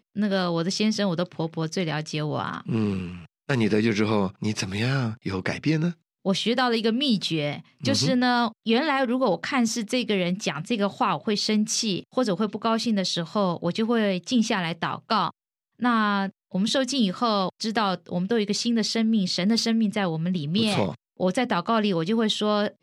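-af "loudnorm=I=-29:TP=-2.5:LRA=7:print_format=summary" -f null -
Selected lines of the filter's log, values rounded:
Input Integrated:    -24.7 LUFS
Input True Peak:      -7.6 dBTP
Input LRA:             2.2 LU
Input Threshold:     -34.8 LUFS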